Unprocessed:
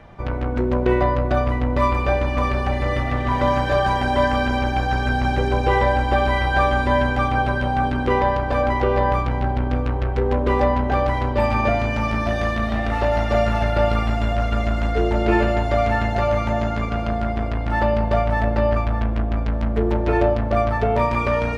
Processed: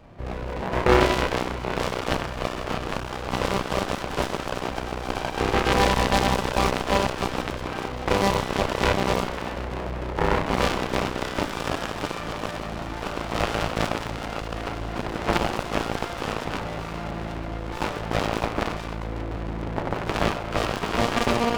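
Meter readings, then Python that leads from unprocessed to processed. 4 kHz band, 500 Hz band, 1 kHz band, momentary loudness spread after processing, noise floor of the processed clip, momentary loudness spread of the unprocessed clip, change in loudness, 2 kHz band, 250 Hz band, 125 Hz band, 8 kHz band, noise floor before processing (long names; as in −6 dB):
+3.5 dB, −6.0 dB, −5.0 dB, 10 LU, −33 dBFS, 4 LU, −5.5 dB, −4.0 dB, −4.5 dB, −8.5 dB, can't be measured, −24 dBFS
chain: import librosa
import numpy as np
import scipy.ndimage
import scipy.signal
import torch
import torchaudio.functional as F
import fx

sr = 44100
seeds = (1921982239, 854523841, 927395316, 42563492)

y = fx.rev_spring(x, sr, rt60_s=1.6, pass_ms=(30,), chirp_ms=45, drr_db=-1.5)
y = fx.cheby_harmonics(y, sr, harmonics=(4, 7), levels_db=(-14, -12), full_scale_db=-2.5)
y = fx.running_max(y, sr, window=17)
y = y * 10.0 ** (-1.5 / 20.0)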